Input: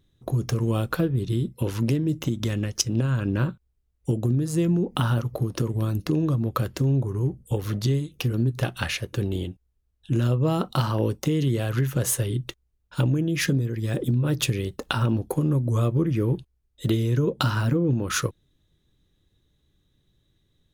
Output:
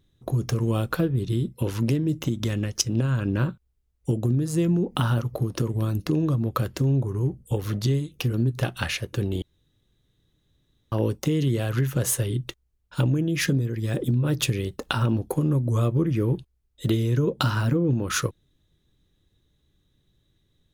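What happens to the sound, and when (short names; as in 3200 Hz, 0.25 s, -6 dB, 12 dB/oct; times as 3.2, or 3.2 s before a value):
9.42–10.92 room tone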